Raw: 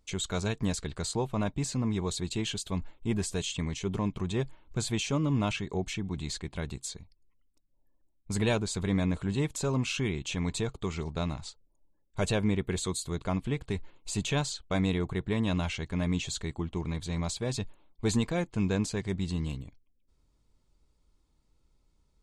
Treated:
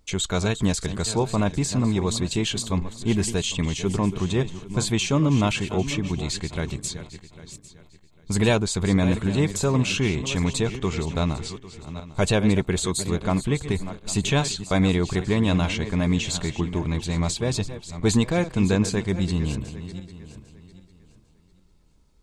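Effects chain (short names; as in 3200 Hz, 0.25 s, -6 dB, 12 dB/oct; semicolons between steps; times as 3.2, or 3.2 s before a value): regenerating reverse delay 0.4 s, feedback 48%, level -12 dB; gain +7.5 dB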